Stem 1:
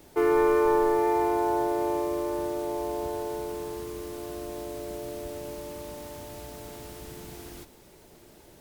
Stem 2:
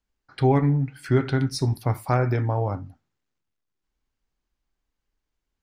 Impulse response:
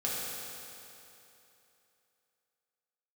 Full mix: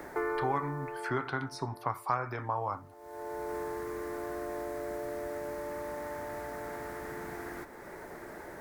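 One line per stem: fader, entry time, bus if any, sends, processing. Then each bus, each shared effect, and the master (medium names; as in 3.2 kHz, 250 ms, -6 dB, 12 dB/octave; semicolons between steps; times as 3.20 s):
-2.5 dB, 0.00 s, no send, resonant high shelf 2.3 kHz -7.5 dB, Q 3; auto duck -23 dB, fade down 1.50 s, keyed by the second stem
-7.0 dB, 0.00 s, no send, peaking EQ 1.1 kHz +14.5 dB 0.75 oct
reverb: none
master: bass shelf 330 Hz -11.5 dB; three bands compressed up and down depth 70%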